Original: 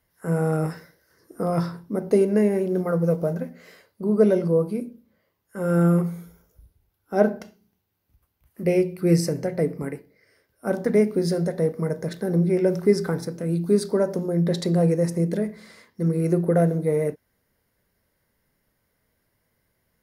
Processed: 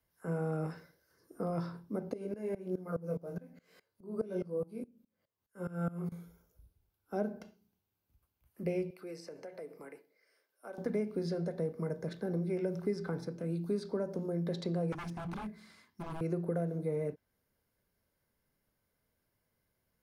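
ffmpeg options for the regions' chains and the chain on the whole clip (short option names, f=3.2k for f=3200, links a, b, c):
-filter_complex "[0:a]asettb=1/sr,asplit=3[a][b][c];[a]atrim=end=2.134[d];[b]atrim=start=2.13:end=6.12,asetpts=PTS-STARTPTS,afade=t=in:d=0.004:c=qsin,afade=t=out:st=3.986:d=0.004:c=qsin,asplit=2[e][f];[f]adelay=22,volume=-3.5dB[g];[e][g]amix=inputs=2:normalize=0,atrim=end_sample=175959,aeval=exprs='val(0)*pow(10,-21*if(lt(mod(-4.8*n/s,1),2*abs(-4.8)/1000),1-mod(-4.8*n/s,1)/(2*abs(-4.8)/1000),(mod(-4.8*n/s,1)-2*abs(-4.8)/1000)/(1-2*abs(-4.8)/1000))/20)':c=same[h];[c]atrim=start=6.116[i];[d][h]acrossfade=d=0.004:c1=hsin:c2=qsin[j];[j][i]acrossfade=d=0.004:c1=qsin:c2=hsin,asettb=1/sr,asplit=3[k][l][m];[k]atrim=end=8.904[n];[l]atrim=start=8.9:end=10.78,asetpts=PTS-STARTPTS,afade=t=in:d=0.004:c=qsin,afade=t=out:st=1.876:d=0.004:c=qsin,highpass=480,acompressor=threshold=-36dB:ratio=2.5:attack=3.2:release=140:knee=1:detection=peak[o];[m]atrim=start=10.776[p];[n][o]acrossfade=d=0.004:c1=hsin:c2=qsin[q];[q][p]acrossfade=d=0.004:c1=qsin:c2=hsin,asettb=1/sr,asplit=3[r][s][t];[r]atrim=end=14.924[u];[s]atrim=start=14.92:end=16.21,asetpts=PTS-STARTPTS,afade=t=in:d=0.004:c=qsin,afade=t=out:st=1.286:d=0.004:c=qsin,aeval=exprs='0.0596*(abs(mod(val(0)/0.0596+3,4)-2)-1)':c=same,equalizer=f=500:t=o:w=0.48:g=-14[v];[t]atrim=start=16.206[w];[u][v]acrossfade=d=0.004:c1=hsin:c2=qsin[x];[x][w]acrossfade=d=0.004:c1=qsin:c2=hsin,bandreject=f=1.9k:w=9.1,acrossover=split=200|510|5100[y][z][aa][ab];[y]acompressor=threshold=-30dB:ratio=4[ac];[z]acompressor=threshold=-28dB:ratio=4[ad];[aa]acompressor=threshold=-31dB:ratio=4[ae];[ab]acompressor=threshold=-60dB:ratio=4[af];[ac][ad][ae][af]amix=inputs=4:normalize=0,volume=-9dB"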